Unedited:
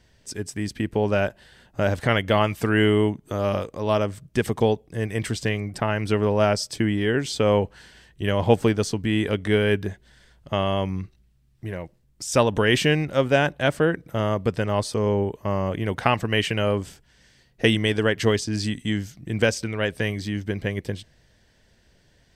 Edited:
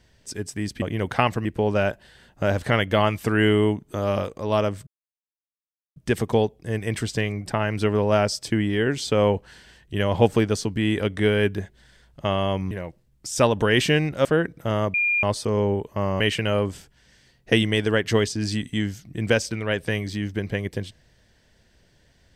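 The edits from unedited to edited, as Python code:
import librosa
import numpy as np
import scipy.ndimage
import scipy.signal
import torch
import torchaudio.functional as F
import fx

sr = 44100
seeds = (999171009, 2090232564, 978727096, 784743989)

y = fx.edit(x, sr, fx.insert_silence(at_s=4.24, length_s=1.09),
    fx.cut(start_s=10.99, length_s=0.68),
    fx.cut(start_s=13.21, length_s=0.53),
    fx.bleep(start_s=14.43, length_s=0.29, hz=2410.0, db=-18.5),
    fx.move(start_s=15.69, length_s=0.63, to_s=0.82), tone=tone)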